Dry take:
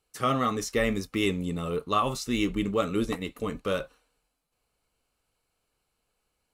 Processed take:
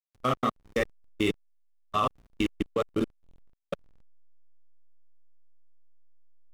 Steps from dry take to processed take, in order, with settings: flutter echo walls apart 8.1 m, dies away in 0.66 s; level held to a coarse grid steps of 24 dB; hysteresis with a dead band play -33 dBFS

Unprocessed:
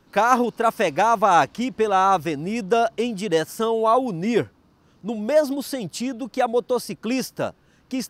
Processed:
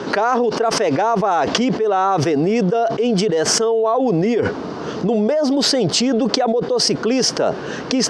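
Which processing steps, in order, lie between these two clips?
cabinet simulation 190–6100 Hz, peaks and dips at 430 Hz +9 dB, 680 Hz +4 dB, 2.5 kHz -4 dB, 3.9 kHz -3 dB; level flattener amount 100%; trim -8.5 dB

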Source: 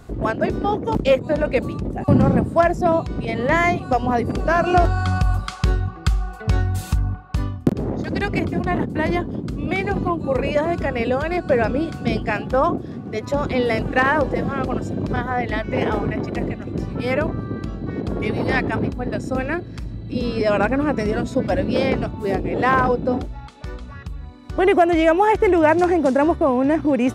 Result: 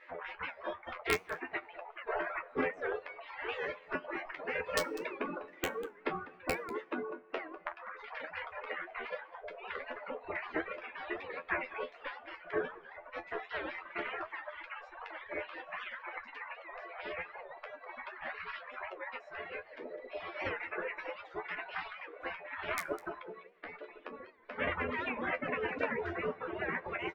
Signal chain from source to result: spectral gate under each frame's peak -25 dB weak; in parallel at +1 dB: compression 16:1, threshold -45 dBFS, peak gain reduction 20 dB; on the sum: four-pole ladder low-pass 2.4 kHz, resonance 50%; peaking EQ 420 Hz +14.5 dB 1.8 oct; band-stop 810 Hz, Q 12; integer overflow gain 20 dB; feedback comb 86 Hz, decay 0.17 s, harmonics all, mix 100%; delay 199 ms -11.5 dB; reverb removal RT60 1.8 s; on a send at -21 dB: reverberation RT60 0.70 s, pre-delay 3 ms; on the sum: warped record 78 rpm, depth 160 cents; trim +8.5 dB

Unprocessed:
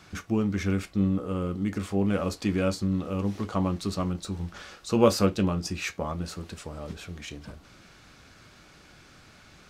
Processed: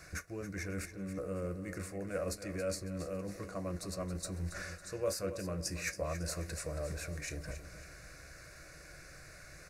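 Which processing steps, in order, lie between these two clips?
graphic EQ with 31 bands 100 Hz -10 dB, 400 Hz -10 dB, 1.25 kHz -10 dB, 10 kHz +5 dB; reverse; compression 6:1, threshold -35 dBFS, peak gain reduction 17.5 dB; reverse; static phaser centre 870 Hz, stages 6; feedback delay 276 ms, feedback 42%, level -11.5 dB; trim +5 dB

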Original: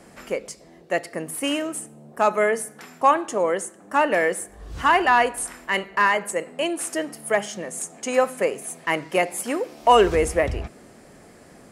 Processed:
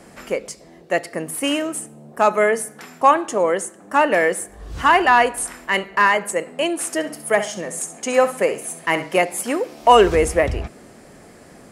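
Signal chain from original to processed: 6.94–9.15 s: flutter echo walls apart 11.3 m, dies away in 0.34 s; trim +3.5 dB

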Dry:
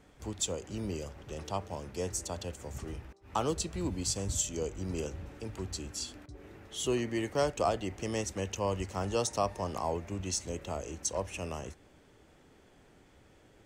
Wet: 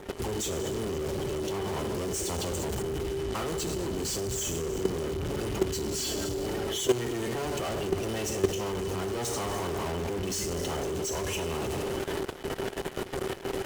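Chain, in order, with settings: coarse spectral quantiser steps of 30 dB; reverse; compression 16:1, threshold -39 dBFS, peak gain reduction 16 dB; reverse; gated-style reverb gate 470 ms falling, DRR 7 dB; in parallel at -6 dB: fuzz box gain 64 dB, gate -59 dBFS; on the sum: small resonant body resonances 390/3000 Hz, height 14 dB, ringing for 90 ms; level held to a coarse grid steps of 13 dB; tape noise reduction on one side only decoder only; trim -5.5 dB

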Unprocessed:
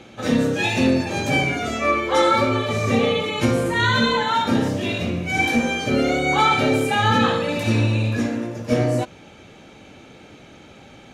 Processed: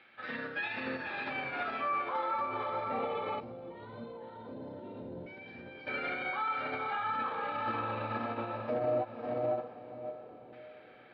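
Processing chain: LFO band-pass saw down 0.19 Hz 470–1800 Hz; echo that smears into a reverb 526 ms, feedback 42%, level -5.5 dB; peak limiter -27.5 dBFS, peak gain reduction 17 dB; 3.40–5.87 s: peaking EQ 1.5 kHz -12.5 dB 3 oct; resampled via 11.025 kHz; bass shelf 150 Hz +8 dB; upward expansion 2.5:1, over -38 dBFS; trim +4 dB

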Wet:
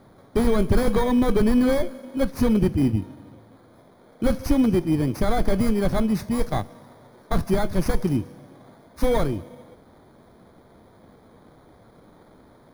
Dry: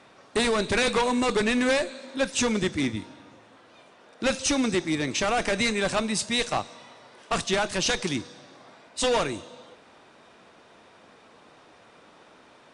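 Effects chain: bit-reversed sample order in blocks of 16 samples; RIAA curve playback

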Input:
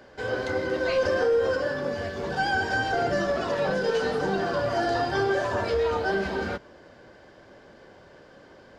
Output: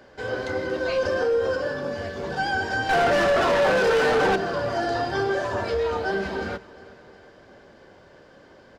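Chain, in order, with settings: 0.71–1.92 s: band-stop 2 kHz, Q 12; 2.89–4.36 s: overdrive pedal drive 28 dB, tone 2 kHz, clips at -13 dBFS; feedback delay 360 ms, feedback 54%, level -20.5 dB

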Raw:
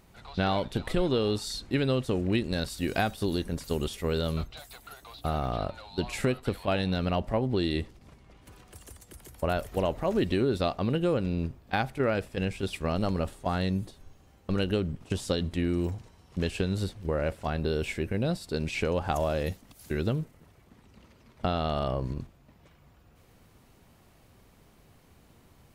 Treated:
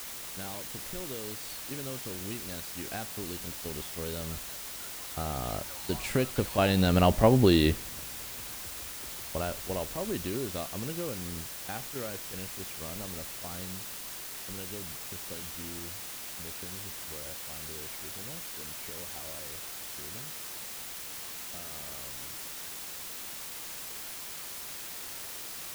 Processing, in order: Doppler pass-by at 7.31 s, 5 m/s, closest 2.6 m; word length cut 8-bit, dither triangular; trim +7 dB

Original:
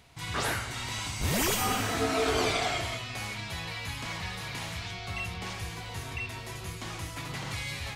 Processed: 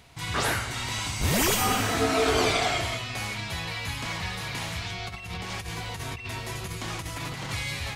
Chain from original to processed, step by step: 4.99–7.49 s: compressor with a negative ratio -38 dBFS, ratio -0.5; trim +4 dB

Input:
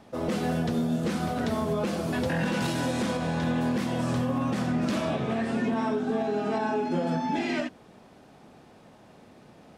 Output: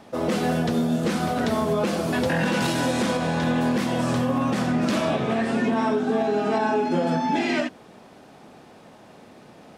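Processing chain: bass shelf 130 Hz -8 dB; trim +6 dB

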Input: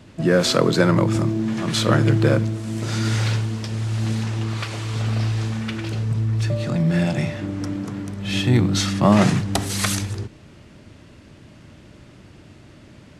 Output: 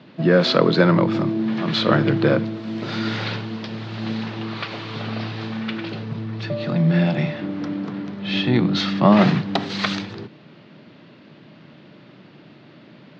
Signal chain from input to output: elliptic band-pass 150–4200 Hz, stop band 40 dB; trim +2 dB

